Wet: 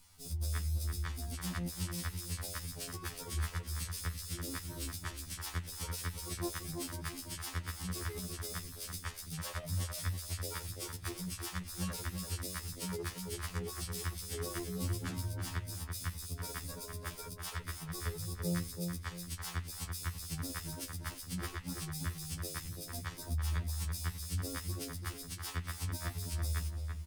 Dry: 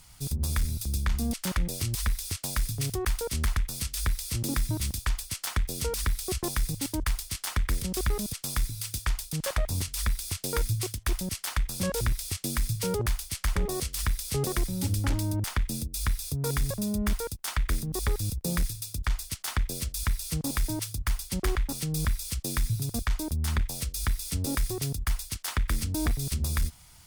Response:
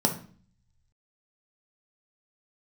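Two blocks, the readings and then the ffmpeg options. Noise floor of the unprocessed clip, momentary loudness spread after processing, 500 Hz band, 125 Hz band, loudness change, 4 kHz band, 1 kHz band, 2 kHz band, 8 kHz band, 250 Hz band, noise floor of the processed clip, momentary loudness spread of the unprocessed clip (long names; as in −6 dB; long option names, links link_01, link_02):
−50 dBFS, 5 LU, −10.5 dB, −8.0 dB, −9.0 dB, −8.0 dB, −8.0 dB, −8.0 dB, −8.5 dB, −9.5 dB, −49 dBFS, 3 LU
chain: -filter_complex "[0:a]asplit=2[link_01][link_02];[link_02]adelay=336,lowpass=frequency=1800:poles=1,volume=-4dB,asplit=2[link_03][link_04];[link_04]adelay=336,lowpass=frequency=1800:poles=1,volume=0.36,asplit=2[link_05][link_06];[link_06]adelay=336,lowpass=frequency=1800:poles=1,volume=0.36,asplit=2[link_07][link_08];[link_08]adelay=336,lowpass=frequency=1800:poles=1,volume=0.36,asplit=2[link_09][link_10];[link_10]adelay=336,lowpass=frequency=1800:poles=1,volume=0.36[link_11];[link_03][link_05][link_07][link_09][link_11]amix=inputs=5:normalize=0[link_12];[link_01][link_12]amix=inputs=2:normalize=0,afftfilt=real='re*2*eq(mod(b,4),0)':imag='im*2*eq(mod(b,4),0)':win_size=2048:overlap=0.75,volume=-6.5dB"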